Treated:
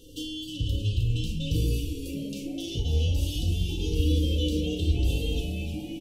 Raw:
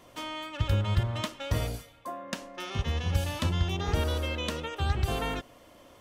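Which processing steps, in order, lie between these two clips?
brick-wall FIR band-stop 540–2700 Hz; peaking EQ 170 Hz -13 dB 2.6 oct; in parallel at +1 dB: compression, threshold -43 dBFS, peak gain reduction 15 dB; on the sum: peak limiter -27 dBFS, peak gain reduction 9.5 dB; bass shelf 400 Hz +11.5 dB; on a send: frequency-shifting echo 311 ms, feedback 56%, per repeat -130 Hz, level -6.5 dB; on the sum: FDN reverb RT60 0.33 s, low-frequency decay 1.4×, high-frequency decay 0.95×, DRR 2 dB; trim -2 dB

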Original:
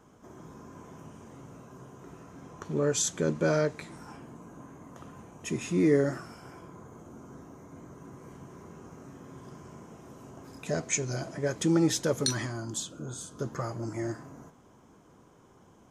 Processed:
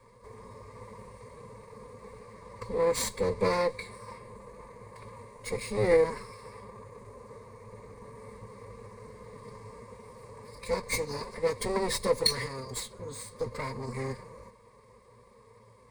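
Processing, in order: comb filter that takes the minimum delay 2.1 ms; formant-preserving pitch shift +2.5 st; rippled EQ curve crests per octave 0.94, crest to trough 15 dB

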